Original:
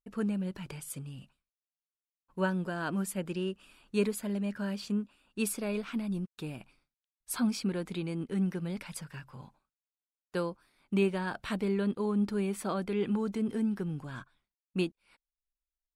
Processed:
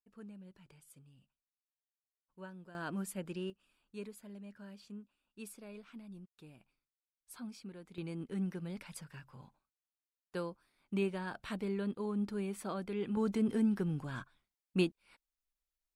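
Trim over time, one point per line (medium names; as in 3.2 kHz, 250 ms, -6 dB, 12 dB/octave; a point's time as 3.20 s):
-19 dB
from 2.75 s -6.5 dB
from 3.50 s -16.5 dB
from 7.98 s -6.5 dB
from 13.17 s 0 dB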